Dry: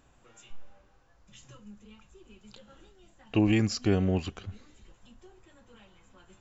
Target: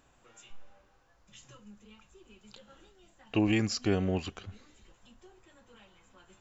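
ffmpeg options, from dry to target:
ffmpeg -i in.wav -af "lowshelf=frequency=290:gain=-5.5" out.wav

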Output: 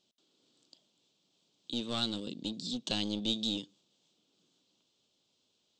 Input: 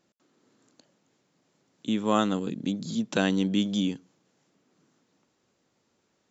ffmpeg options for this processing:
ffmpeg -i in.wav -af "aeval=exprs='clip(val(0),-1,0.0447)':channel_layout=same,lowpass=5100,highshelf=frequency=2300:width_type=q:width=3:gain=10,asetrate=48000,aresample=44100,volume=-9dB" out.wav

